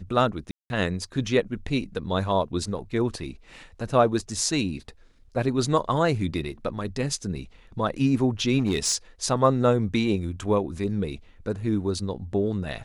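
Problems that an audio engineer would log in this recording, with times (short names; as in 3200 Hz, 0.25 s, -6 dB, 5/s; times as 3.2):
0.51–0.7 gap 0.191 s
8.59–8.95 clipped -17.5 dBFS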